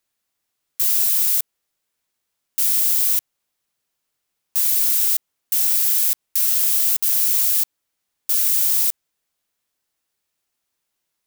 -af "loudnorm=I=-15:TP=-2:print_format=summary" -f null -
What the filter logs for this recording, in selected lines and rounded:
Input Integrated:    -16.5 LUFS
Input True Peak:      -4.0 dBTP
Input LRA:             5.6 LU
Input Threshold:     -26.9 LUFS